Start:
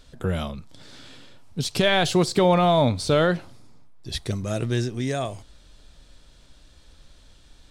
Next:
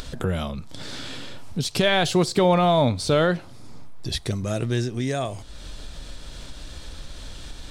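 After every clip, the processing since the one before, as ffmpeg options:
ffmpeg -i in.wav -af "acompressor=mode=upward:threshold=-22dB:ratio=2.5" out.wav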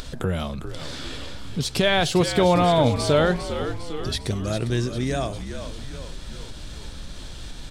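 ffmpeg -i in.wav -filter_complex "[0:a]asplit=8[link_01][link_02][link_03][link_04][link_05][link_06][link_07][link_08];[link_02]adelay=402,afreqshift=-66,volume=-9.5dB[link_09];[link_03]adelay=804,afreqshift=-132,volume=-14.2dB[link_10];[link_04]adelay=1206,afreqshift=-198,volume=-19dB[link_11];[link_05]adelay=1608,afreqshift=-264,volume=-23.7dB[link_12];[link_06]adelay=2010,afreqshift=-330,volume=-28.4dB[link_13];[link_07]adelay=2412,afreqshift=-396,volume=-33.2dB[link_14];[link_08]adelay=2814,afreqshift=-462,volume=-37.9dB[link_15];[link_01][link_09][link_10][link_11][link_12][link_13][link_14][link_15]amix=inputs=8:normalize=0" out.wav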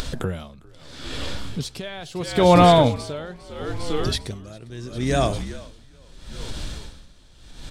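ffmpeg -i in.wav -af "aeval=exprs='val(0)*pow(10,-22*(0.5-0.5*cos(2*PI*0.76*n/s))/20)':channel_layout=same,volume=6.5dB" out.wav

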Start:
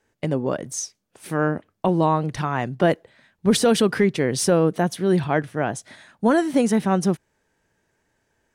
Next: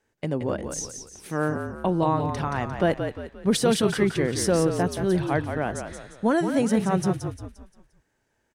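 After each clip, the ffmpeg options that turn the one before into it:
ffmpeg -i in.wav -filter_complex "[0:a]asplit=6[link_01][link_02][link_03][link_04][link_05][link_06];[link_02]adelay=175,afreqshift=-44,volume=-7dB[link_07];[link_03]adelay=350,afreqshift=-88,volume=-14.5dB[link_08];[link_04]adelay=525,afreqshift=-132,volume=-22.1dB[link_09];[link_05]adelay=700,afreqshift=-176,volume=-29.6dB[link_10];[link_06]adelay=875,afreqshift=-220,volume=-37.1dB[link_11];[link_01][link_07][link_08][link_09][link_10][link_11]amix=inputs=6:normalize=0,volume=-4dB" out.wav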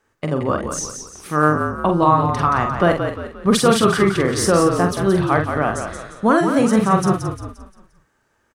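ffmpeg -i in.wav -filter_complex "[0:a]equalizer=frequency=1200:width=4:gain=13,asplit=2[link_01][link_02];[link_02]adelay=46,volume=-6dB[link_03];[link_01][link_03]amix=inputs=2:normalize=0,volume=5dB" out.wav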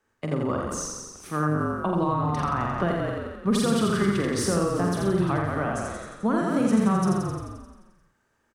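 ffmpeg -i in.wav -filter_complex "[0:a]equalizer=frequency=230:width_type=o:width=0.67:gain=3,acrossover=split=230[link_01][link_02];[link_02]acompressor=threshold=-17dB:ratio=6[link_03];[link_01][link_03]amix=inputs=2:normalize=0,aecho=1:1:85:0.708,volume=-7.5dB" out.wav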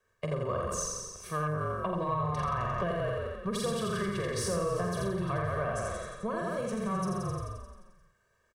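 ffmpeg -i in.wav -af "acompressor=threshold=-27dB:ratio=2,asoftclip=type=tanh:threshold=-18.5dB,aecho=1:1:1.8:0.99,volume=-4.5dB" out.wav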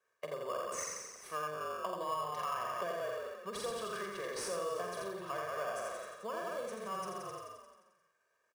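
ffmpeg -i in.wav -filter_complex "[0:a]highpass=460,asplit=2[link_01][link_02];[link_02]acrusher=samples=11:mix=1:aa=0.000001,volume=-7.5dB[link_03];[link_01][link_03]amix=inputs=2:normalize=0,volume=-6.5dB" out.wav

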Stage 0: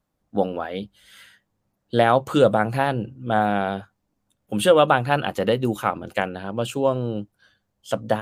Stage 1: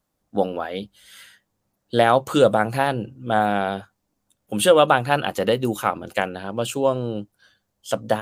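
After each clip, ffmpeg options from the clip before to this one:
ffmpeg -i in.wav -af "bass=frequency=250:gain=-3,treble=frequency=4000:gain=5,volume=1dB" out.wav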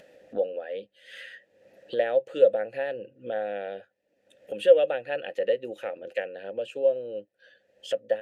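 ffmpeg -i in.wav -filter_complex "[0:a]asplit=3[link_01][link_02][link_03];[link_01]bandpass=frequency=530:width_type=q:width=8,volume=0dB[link_04];[link_02]bandpass=frequency=1840:width_type=q:width=8,volume=-6dB[link_05];[link_03]bandpass=frequency=2480:width_type=q:width=8,volume=-9dB[link_06];[link_04][link_05][link_06]amix=inputs=3:normalize=0,acompressor=mode=upward:threshold=-28dB:ratio=2.5" out.wav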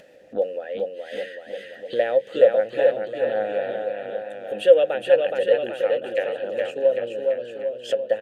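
ffmpeg -i in.wav -af "aecho=1:1:420|798|1138|1444|1720:0.631|0.398|0.251|0.158|0.1,volume=3.5dB" out.wav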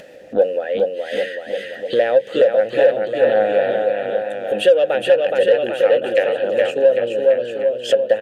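ffmpeg -i in.wav -filter_complex "[0:a]asplit=2[link_01][link_02];[link_02]asoftclip=type=tanh:threshold=-20dB,volume=-6.5dB[link_03];[link_01][link_03]amix=inputs=2:normalize=0,alimiter=limit=-10.5dB:level=0:latency=1:release=324,volume=6dB" out.wav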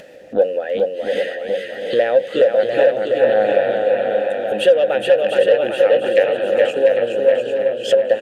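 ffmpeg -i in.wav -af "aecho=1:1:698|1396|2094|2792:0.447|0.13|0.0376|0.0109" out.wav

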